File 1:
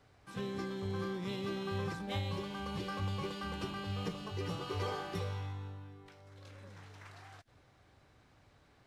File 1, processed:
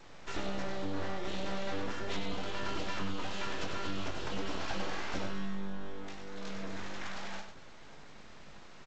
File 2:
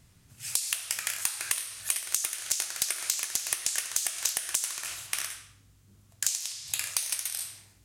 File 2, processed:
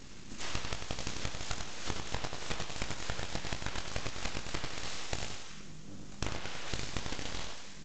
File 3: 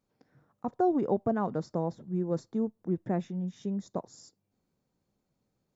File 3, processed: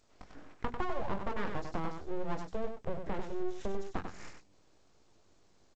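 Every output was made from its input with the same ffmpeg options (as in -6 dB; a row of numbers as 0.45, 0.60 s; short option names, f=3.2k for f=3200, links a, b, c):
-filter_complex "[0:a]asplit=2[a][b];[b]adelay=21,volume=-6.5dB[c];[a][c]amix=inputs=2:normalize=0,acompressor=threshold=-45dB:ratio=5,aeval=exprs='abs(val(0))':c=same,bandreject=f=60:t=h:w=6,bandreject=f=120:t=h:w=6,bandreject=f=180:t=h:w=6,bandreject=f=240:t=h:w=6,aecho=1:1:96:0.473,volume=12.5dB" -ar 16000 -c:a g722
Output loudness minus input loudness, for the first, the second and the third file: 0.0, -10.5, -7.5 LU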